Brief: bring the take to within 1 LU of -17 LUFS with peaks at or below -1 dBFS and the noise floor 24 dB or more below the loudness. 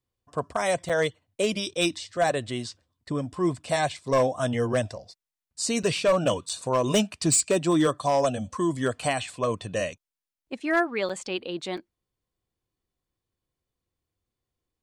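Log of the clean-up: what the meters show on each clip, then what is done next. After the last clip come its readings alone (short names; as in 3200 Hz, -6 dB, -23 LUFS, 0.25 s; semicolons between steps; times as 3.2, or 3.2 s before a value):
clipped 0.5%; flat tops at -15.5 dBFS; dropouts 5; longest dropout 5.9 ms; loudness -26.5 LUFS; peak -15.5 dBFS; loudness target -17.0 LUFS
-> clip repair -15.5 dBFS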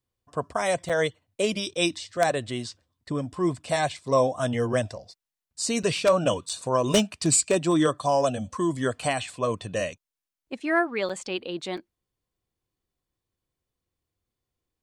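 clipped 0.0%; dropouts 5; longest dropout 5.9 ms
-> interpolate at 0.89/5.83/6.49/11.09/11.77, 5.9 ms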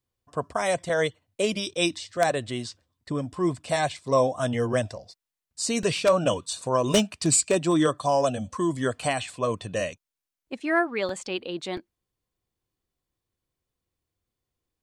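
dropouts 0; loudness -26.0 LUFS; peak -6.5 dBFS; loudness target -17.0 LUFS
-> gain +9 dB; limiter -1 dBFS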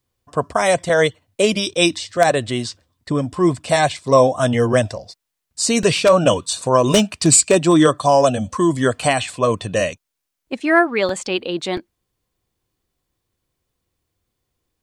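loudness -17.5 LUFS; peak -1.0 dBFS; noise floor -79 dBFS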